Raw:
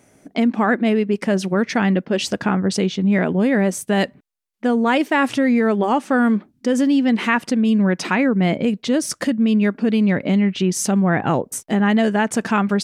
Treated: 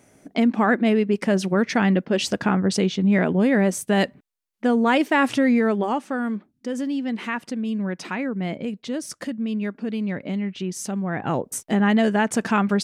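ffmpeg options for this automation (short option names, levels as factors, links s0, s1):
-af "volume=2,afade=t=out:st=5.49:d=0.68:silence=0.398107,afade=t=in:st=11.11:d=0.46:silence=0.421697"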